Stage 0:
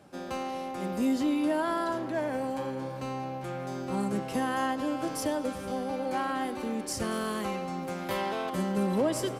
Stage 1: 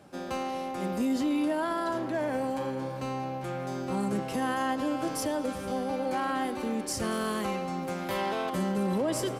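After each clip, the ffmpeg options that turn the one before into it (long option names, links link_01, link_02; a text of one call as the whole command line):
ffmpeg -i in.wav -af "alimiter=limit=-23dB:level=0:latency=1:release=14,volume=1.5dB" out.wav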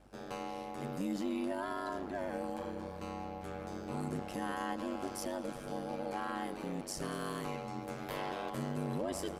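ffmpeg -i in.wav -af "aeval=exprs='val(0)*sin(2*PI*48*n/s)':channel_layout=same,aeval=exprs='val(0)+0.00126*(sin(2*PI*50*n/s)+sin(2*PI*2*50*n/s)/2+sin(2*PI*3*50*n/s)/3+sin(2*PI*4*50*n/s)/4+sin(2*PI*5*50*n/s)/5)':channel_layout=same,volume=-5.5dB" out.wav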